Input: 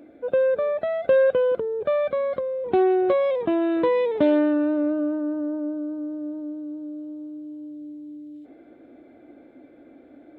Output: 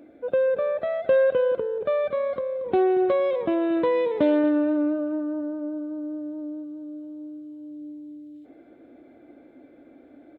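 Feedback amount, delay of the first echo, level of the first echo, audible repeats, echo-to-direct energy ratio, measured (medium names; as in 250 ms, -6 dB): 25%, 231 ms, -14.5 dB, 2, -14.0 dB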